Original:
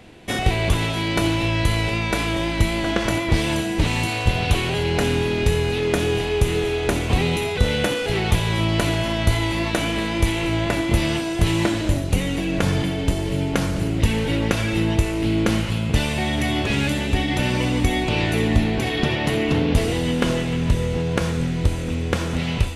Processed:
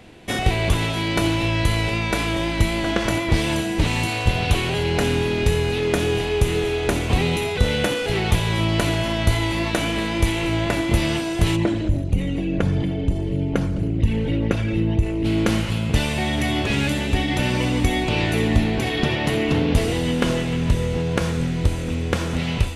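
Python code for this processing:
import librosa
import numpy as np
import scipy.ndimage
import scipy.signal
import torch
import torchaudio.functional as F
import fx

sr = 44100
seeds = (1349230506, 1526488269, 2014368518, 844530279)

y = fx.envelope_sharpen(x, sr, power=1.5, at=(11.55, 15.24), fade=0.02)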